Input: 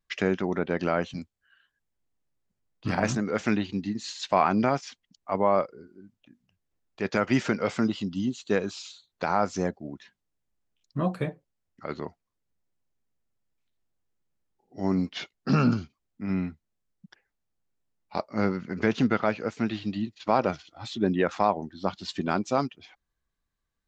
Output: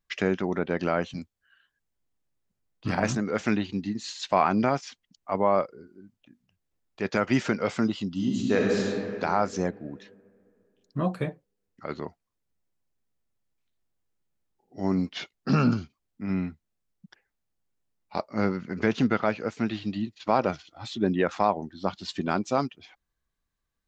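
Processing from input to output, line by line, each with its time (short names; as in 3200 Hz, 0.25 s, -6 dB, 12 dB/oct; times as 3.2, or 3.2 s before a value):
8.13–8.75 reverb throw, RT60 2.7 s, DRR -2.5 dB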